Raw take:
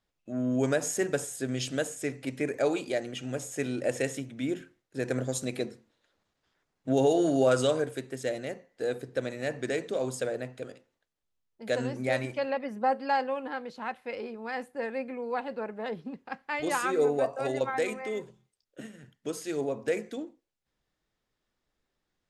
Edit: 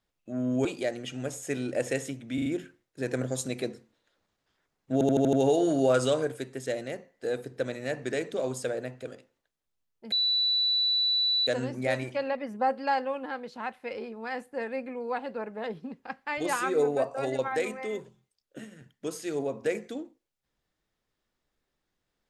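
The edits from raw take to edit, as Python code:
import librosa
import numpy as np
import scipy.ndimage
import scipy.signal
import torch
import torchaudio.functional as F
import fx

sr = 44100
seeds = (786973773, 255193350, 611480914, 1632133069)

y = fx.edit(x, sr, fx.cut(start_s=0.65, length_s=2.09),
    fx.stutter(start_s=4.43, slice_s=0.04, count=4),
    fx.stutter(start_s=6.9, slice_s=0.08, count=6),
    fx.insert_tone(at_s=11.69, length_s=1.35, hz=3960.0, db=-22.5), tone=tone)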